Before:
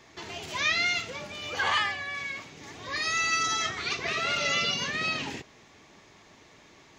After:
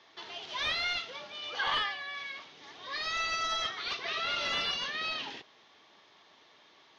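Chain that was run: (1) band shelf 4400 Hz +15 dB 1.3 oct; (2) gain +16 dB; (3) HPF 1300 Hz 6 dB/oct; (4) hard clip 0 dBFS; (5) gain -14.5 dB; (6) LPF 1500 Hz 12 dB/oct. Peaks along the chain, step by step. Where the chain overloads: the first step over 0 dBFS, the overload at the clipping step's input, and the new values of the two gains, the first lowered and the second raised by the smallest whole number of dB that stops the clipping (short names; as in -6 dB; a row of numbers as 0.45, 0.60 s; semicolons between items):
-6.0, +10.0, +9.0, 0.0, -14.5, -19.5 dBFS; step 2, 9.0 dB; step 2 +7 dB, step 5 -5.5 dB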